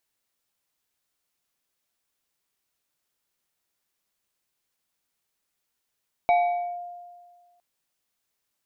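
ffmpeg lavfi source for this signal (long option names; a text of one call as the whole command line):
ffmpeg -f lavfi -i "aevalsrc='0.178*pow(10,-3*t/1.69)*sin(2*PI*704*t+0.51*clip(1-t/0.49,0,1)*sin(2*PI*2.22*704*t))':duration=1.31:sample_rate=44100" out.wav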